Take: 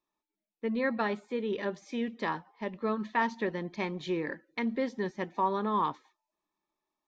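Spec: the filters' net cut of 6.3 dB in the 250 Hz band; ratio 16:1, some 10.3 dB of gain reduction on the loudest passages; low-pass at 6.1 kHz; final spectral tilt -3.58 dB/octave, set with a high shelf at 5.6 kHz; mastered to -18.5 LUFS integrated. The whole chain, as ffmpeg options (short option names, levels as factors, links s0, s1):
-af "lowpass=6100,equalizer=f=250:t=o:g=-8,highshelf=f=5600:g=-6,acompressor=threshold=0.02:ratio=16,volume=12.6"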